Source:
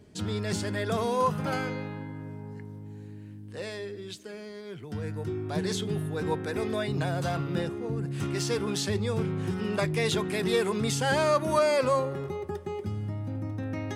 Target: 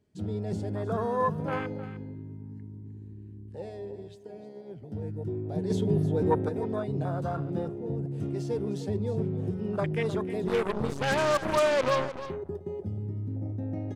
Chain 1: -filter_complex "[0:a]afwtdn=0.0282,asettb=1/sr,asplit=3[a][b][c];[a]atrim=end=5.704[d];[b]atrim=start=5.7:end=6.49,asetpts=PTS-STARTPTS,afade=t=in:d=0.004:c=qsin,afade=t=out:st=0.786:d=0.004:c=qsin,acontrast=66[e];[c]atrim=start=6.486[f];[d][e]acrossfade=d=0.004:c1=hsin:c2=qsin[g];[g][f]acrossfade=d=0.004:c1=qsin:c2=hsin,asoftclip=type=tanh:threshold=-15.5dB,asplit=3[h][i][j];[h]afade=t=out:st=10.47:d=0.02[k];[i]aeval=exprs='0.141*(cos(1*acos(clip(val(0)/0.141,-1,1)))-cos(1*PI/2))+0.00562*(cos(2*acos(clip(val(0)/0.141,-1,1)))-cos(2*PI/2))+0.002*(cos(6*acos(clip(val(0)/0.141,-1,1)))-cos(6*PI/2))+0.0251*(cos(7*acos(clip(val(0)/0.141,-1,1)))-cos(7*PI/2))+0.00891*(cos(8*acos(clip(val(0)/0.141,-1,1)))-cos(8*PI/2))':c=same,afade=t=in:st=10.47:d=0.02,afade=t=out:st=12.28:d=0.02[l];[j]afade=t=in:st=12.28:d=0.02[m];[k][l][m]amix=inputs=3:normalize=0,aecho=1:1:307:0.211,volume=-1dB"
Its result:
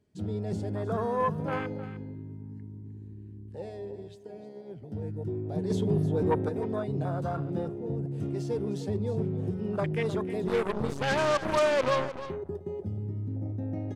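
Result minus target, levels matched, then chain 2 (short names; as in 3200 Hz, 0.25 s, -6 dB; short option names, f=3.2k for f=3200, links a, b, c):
soft clip: distortion +13 dB
-filter_complex "[0:a]afwtdn=0.0282,asettb=1/sr,asplit=3[a][b][c];[a]atrim=end=5.704[d];[b]atrim=start=5.7:end=6.49,asetpts=PTS-STARTPTS,afade=t=in:d=0.004:c=qsin,afade=t=out:st=0.786:d=0.004:c=qsin,acontrast=66[e];[c]atrim=start=6.486[f];[d][e]acrossfade=d=0.004:c1=hsin:c2=qsin[g];[g][f]acrossfade=d=0.004:c1=qsin:c2=hsin,asoftclip=type=tanh:threshold=-8dB,asplit=3[h][i][j];[h]afade=t=out:st=10.47:d=0.02[k];[i]aeval=exprs='0.141*(cos(1*acos(clip(val(0)/0.141,-1,1)))-cos(1*PI/2))+0.00562*(cos(2*acos(clip(val(0)/0.141,-1,1)))-cos(2*PI/2))+0.002*(cos(6*acos(clip(val(0)/0.141,-1,1)))-cos(6*PI/2))+0.0251*(cos(7*acos(clip(val(0)/0.141,-1,1)))-cos(7*PI/2))+0.00891*(cos(8*acos(clip(val(0)/0.141,-1,1)))-cos(8*PI/2))':c=same,afade=t=in:st=10.47:d=0.02,afade=t=out:st=12.28:d=0.02[l];[j]afade=t=in:st=12.28:d=0.02[m];[k][l][m]amix=inputs=3:normalize=0,aecho=1:1:307:0.211,volume=-1dB"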